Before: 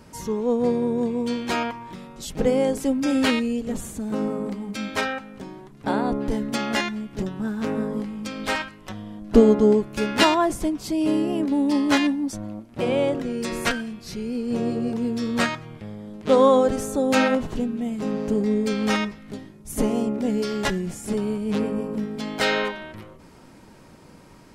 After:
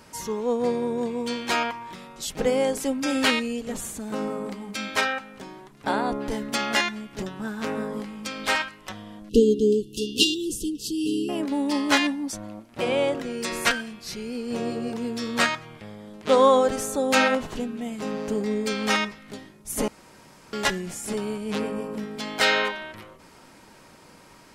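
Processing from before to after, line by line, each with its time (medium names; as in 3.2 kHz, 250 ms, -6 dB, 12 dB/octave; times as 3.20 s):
9.29–11.29 s: brick-wall FIR band-stop 510–2600 Hz
19.88–20.53 s: room tone
whole clip: bass shelf 470 Hz -11 dB; trim +3.5 dB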